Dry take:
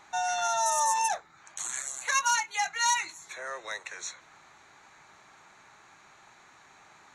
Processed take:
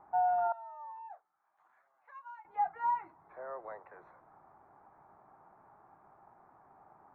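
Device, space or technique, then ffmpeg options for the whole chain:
under water: -filter_complex "[0:a]asettb=1/sr,asplit=3[link_01][link_02][link_03];[link_01]atrim=end=0.524[link_04];[link_02]atrim=start=0.52:end=2.45,asetpts=PTS-STARTPTS,afade=type=in:duration=0.004:curve=qsin,afade=type=out:start_time=1.926:duration=0.004:curve=qsin,aderivative[link_05];[link_03]atrim=start=2.446[link_06];[link_04][link_05]acrossfade=duration=0.004:curve1=hsin:curve2=qsin[link_07];[link_07][link_06]acrossfade=duration=0.004:curve1=qsin:curve2=hsin,lowpass=frequency=1100:width=0.5412,lowpass=frequency=1100:width=1.3066,equalizer=frequency=740:width_type=o:width=0.4:gain=5,volume=-2.5dB"

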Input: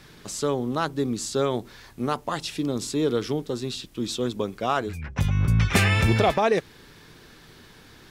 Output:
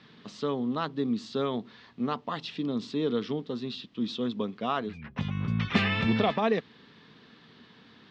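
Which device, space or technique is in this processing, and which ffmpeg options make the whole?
kitchen radio: -af "highpass=180,equalizer=frequency=220:width_type=q:width=4:gain=6,equalizer=frequency=350:width_type=q:width=4:gain=-8,equalizer=frequency=570:width_type=q:width=4:gain=-6,equalizer=frequency=820:width_type=q:width=4:gain=-5,equalizer=frequency=1500:width_type=q:width=4:gain=-6,equalizer=frequency=2300:width_type=q:width=4:gain=-5,lowpass=frequency=3900:width=0.5412,lowpass=frequency=3900:width=1.3066,volume=-1.5dB"

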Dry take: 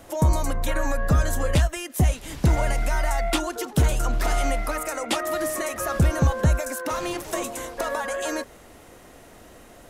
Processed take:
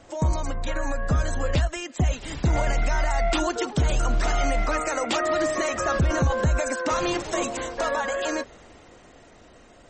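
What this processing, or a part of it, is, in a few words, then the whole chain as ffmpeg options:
low-bitrate web radio: -af "dynaudnorm=framelen=240:gausssize=17:maxgain=8.5dB,alimiter=limit=-11.5dB:level=0:latency=1:release=13,volume=-3dB" -ar 48000 -c:a libmp3lame -b:a 32k

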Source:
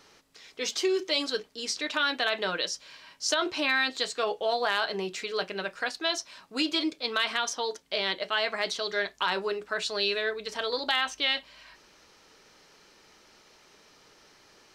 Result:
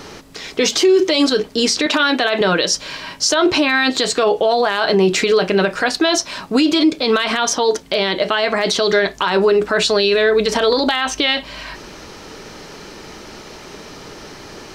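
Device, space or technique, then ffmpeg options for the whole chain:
mastering chain: -filter_complex "[0:a]equalizer=frequency=510:width_type=o:width=0.22:gain=-2.5,acompressor=threshold=-31dB:ratio=2,tiltshelf=frequency=680:gain=5,asoftclip=type=hard:threshold=-21.5dB,alimiter=level_in=29dB:limit=-1dB:release=50:level=0:latency=1,asettb=1/sr,asplit=3[link_01][link_02][link_03];[link_01]atrim=end=1.864[link_04];[link_02]atrim=start=1.86:end=2.41,asetpts=PTS-STARTPTS,afade=type=in:duration=0.004:curve=qsin,afade=type=out:start_time=0.546:duration=0.004:curve=qsin,highpass=190[link_05];[link_03]atrim=start=2.406[link_06];[link_04][link_05]acrossfade=duration=0.004:curve1=hsin:curve2=qsin[link_07];[link_07][link_06]acrossfade=duration=0.004:curve1=qsin:curve2=hsin,volume=-5.5dB"

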